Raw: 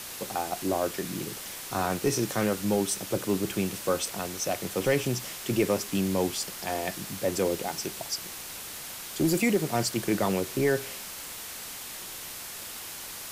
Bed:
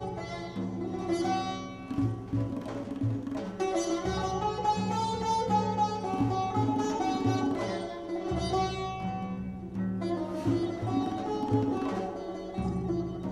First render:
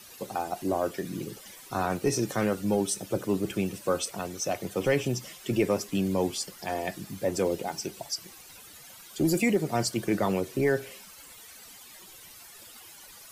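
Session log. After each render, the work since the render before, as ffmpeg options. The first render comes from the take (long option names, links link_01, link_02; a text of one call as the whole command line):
ffmpeg -i in.wav -af "afftdn=noise_reduction=14:noise_floor=-40" out.wav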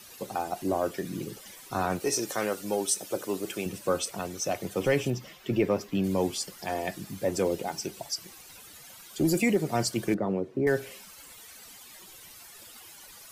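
ffmpeg -i in.wav -filter_complex "[0:a]asettb=1/sr,asplit=3[link_01][link_02][link_03];[link_01]atrim=end=2.004[link_04];[link_02]atrim=start=2:end=3.66,asetpts=PTS-STARTPTS,afade=type=in:duration=0.004:curve=qsin,afade=type=out:start_time=1.656:duration=0.004:curve=qsin,bass=frequency=250:gain=-14,treble=frequency=4000:gain=4[link_05];[link_03]atrim=start=3.656[link_06];[link_04][link_05]acrossfade=duration=0.004:curve1=hsin:curve2=qsin[link_07];[link_07][link_06]acrossfade=duration=0.004:curve1=qsin:curve2=hsin,asettb=1/sr,asplit=3[link_08][link_09][link_10];[link_08]atrim=end=5.104[link_11];[link_09]atrim=start=5.1:end=6.04,asetpts=PTS-STARTPTS,afade=type=in:duration=0.004:curve=qsin,afade=type=out:start_time=0.936:duration=0.004:curve=qsin,equalizer=frequency=9200:width_type=o:width=1.4:gain=-13.5[link_12];[link_10]atrim=start=6.036[link_13];[link_11][link_12]acrossfade=duration=0.004:curve1=hsin:curve2=qsin[link_14];[link_14][link_13]acrossfade=duration=0.004:curve1=qsin:curve2=hsin,asettb=1/sr,asplit=3[link_15][link_16][link_17];[link_15]atrim=end=10.144[link_18];[link_16]atrim=start=10.14:end=10.67,asetpts=PTS-STARTPTS,afade=type=in:duration=0.004:curve=qsin,afade=type=out:start_time=0.526:duration=0.004:curve=qsin,bandpass=frequency=280:width_type=q:width=0.63[link_19];[link_17]atrim=start=10.666[link_20];[link_18][link_19]acrossfade=duration=0.004:curve1=hsin:curve2=qsin[link_21];[link_21][link_20]acrossfade=duration=0.004:curve1=qsin:curve2=hsin" out.wav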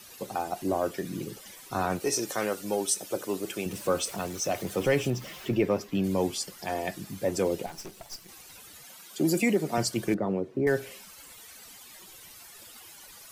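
ffmpeg -i in.wav -filter_complex "[0:a]asettb=1/sr,asplit=3[link_01][link_02][link_03];[link_01]atrim=end=3.714[link_04];[link_02]atrim=start=3.71:end=5.54,asetpts=PTS-STARTPTS,afade=type=in:duration=0.004:curve=qsin,afade=type=out:start_time=1.826:duration=0.004:curve=qsin,aeval=exprs='val(0)+0.5*0.00794*sgn(val(0))':channel_layout=same[link_05];[link_03]atrim=start=5.536[link_06];[link_04][link_05]acrossfade=duration=0.004:curve1=hsin:curve2=qsin[link_07];[link_07][link_06]acrossfade=duration=0.004:curve1=qsin:curve2=hsin,asettb=1/sr,asplit=3[link_08][link_09][link_10];[link_08]atrim=end=7.664[link_11];[link_09]atrim=start=7.66:end=8.29,asetpts=PTS-STARTPTS,afade=type=in:duration=0.004:curve=qsin,afade=type=out:start_time=0.626:duration=0.004:curve=qsin,aeval=exprs='(tanh(70.8*val(0)+0.8)-tanh(0.8))/70.8':channel_layout=same[link_12];[link_10]atrim=start=8.286[link_13];[link_11][link_12]acrossfade=duration=0.004:curve1=hsin:curve2=qsin[link_14];[link_14][link_13]acrossfade=duration=0.004:curve1=qsin:curve2=hsin,asettb=1/sr,asplit=3[link_15][link_16][link_17];[link_15]atrim=end=8.844[link_18];[link_16]atrim=start=8.84:end=9.78,asetpts=PTS-STARTPTS,afade=type=in:duration=0.004:curve=qsin,afade=type=out:start_time=0.936:duration=0.004:curve=qsin,highpass=frequency=150:width=0.5412,highpass=frequency=150:width=1.3066[link_19];[link_17]atrim=start=9.776[link_20];[link_18][link_19]acrossfade=duration=0.004:curve1=hsin:curve2=qsin[link_21];[link_21][link_20]acrossfade=duration=0.004:curve1=qsin:curve2=hsin" out.wav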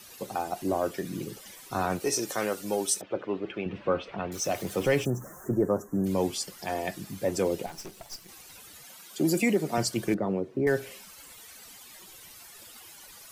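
ffmpeg -i in.wav -filter_complex "[0:a]asettb=1/sr,asplit=3[link_01][link_02][link_03];[link_01]atrim=end=3.014[link_04];[link_02]atrim=start=3.01:end=4.32,asetpts=PTS-STARTPTS,afade=type=in:duration=0.004:curve=qsin,afade=type=out:start_time=1.306:duration=0.004:curve=qsin,lowpass=frequency=2900:width=0.5412,lowpass=frequency=2900:width=1.3066[link_05];[link_03]atrim=start=4.316[link_06];[link_04][link_05]acrossfade=duration=0.004:curve1=hsin:curve2=qsin[link_07];[link_07][link_06]acrossfade=duration=0.004:curve1=qsin:curve2=hsin,asplit=3[link_08][link_09][link_10];[link_08]afade=type=out:start_time=5.04:duration=0.02[link_11];[link_09]asuperstop=centerf=3300:order=12:qfactor=0.72,afade=type=in:start_time=5.04:duration=0.02,afade=type=out:start_time=6.05:duration=0.02[link_12];[link_10]afade=type=in:start_time=6.05:duration=0.02[link_13];[link_11][link_12][link_13]amix=inputs=3:normalize=0" out.wav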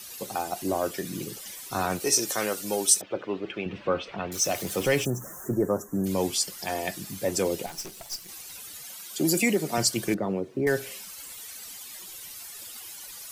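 ffmpeg -i in.wav -af "highshelf=frequency=2700:gain=8.5" out.wav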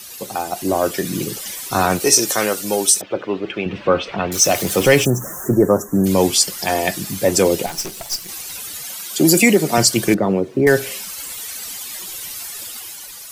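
ffmpeg -i in.wav -af "dynaudnorm=framelen=170:gausssize=9:maxgain=5.5dB,alimiter=level_in=6dB:limit=-1dB:release=50:level=0:latency=1" out.wav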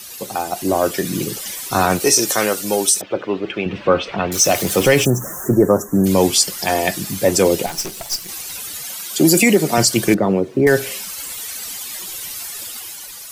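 ffmpeg -i in.wav -af "volume=1dB,alimiter=limit=-3dB:level=0:latency=1" out.wav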